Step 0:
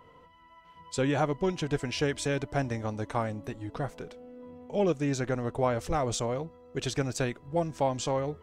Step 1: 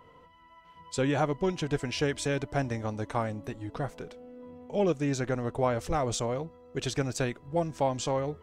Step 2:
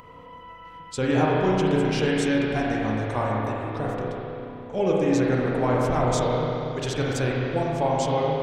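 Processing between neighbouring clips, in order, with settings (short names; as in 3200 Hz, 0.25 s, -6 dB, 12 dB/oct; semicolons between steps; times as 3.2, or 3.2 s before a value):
nothing audible
upward compressor, threshold -44 dBFS; spring tank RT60 3 s, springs 32/46 ms, chirp 60 ms, DRR -4.5 dB; gain +1 dB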